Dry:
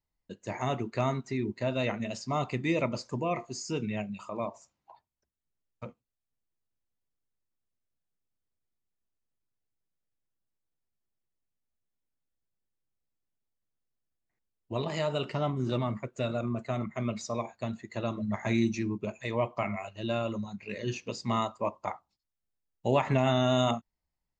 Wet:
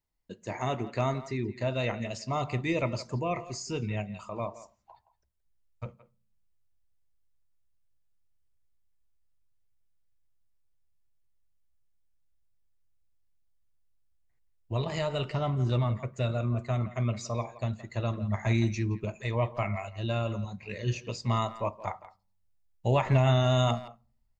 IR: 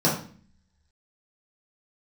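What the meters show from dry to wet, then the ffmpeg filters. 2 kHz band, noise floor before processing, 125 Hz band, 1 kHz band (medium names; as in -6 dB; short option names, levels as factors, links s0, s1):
0.0 dB, under -85 dBFS, +6.0 dB, 0.0 dB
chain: -filter_complex "[0:a]asplit=2[s0][s1];[s1]adelay=170,highpass=300,lowpass=3400,asoftclip=type=hard:threshold=0.0841,volume=0.178[s2];[s0][s2]amix=inputs=2:normalize=0,asplit=2[s3][s4];[1:a]atrim=start_sample=2205[s5];[s4][s5]afir=irnorm=-1:irlink=0,volume=0.015[s6];[s3][s6]amix=inputs=2:normalize=0,asubboost=boost=6:cutoff=96"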